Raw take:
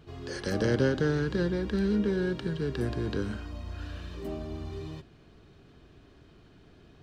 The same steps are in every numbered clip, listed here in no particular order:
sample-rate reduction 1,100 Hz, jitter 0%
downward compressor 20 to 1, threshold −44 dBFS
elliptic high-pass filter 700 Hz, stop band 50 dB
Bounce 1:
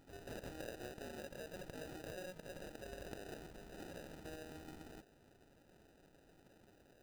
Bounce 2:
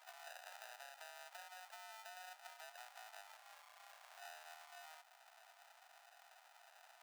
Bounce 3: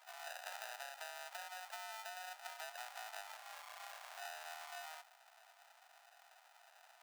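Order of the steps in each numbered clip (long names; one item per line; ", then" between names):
elliptic high-pass filter, then downward compressor, then sample-rate reduction
downward compressor, then sample-rate reduction, then elliptic high-pass filter
sample-rate reduction, then elliptic high-pass filter, then downward compressor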